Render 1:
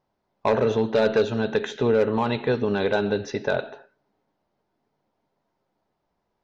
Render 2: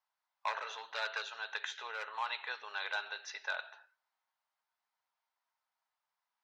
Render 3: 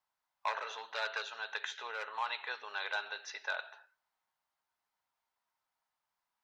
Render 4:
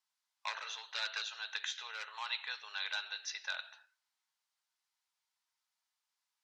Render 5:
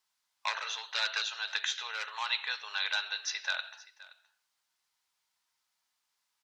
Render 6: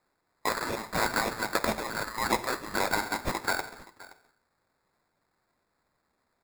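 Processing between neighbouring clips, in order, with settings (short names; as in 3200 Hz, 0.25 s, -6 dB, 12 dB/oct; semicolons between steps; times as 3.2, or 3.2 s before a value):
HPF 1000 Hz 24 dB/oct; gain -6 dB
low shelf 430 Hz +6.5 dB
band-pass 5500 Hz, Q 0.81; gain +6 dB
echo 0.522 s -20 dB; gain +6.5 dB
sample-rate reducer 3000 Hz, jitter 0%; gain +5 dB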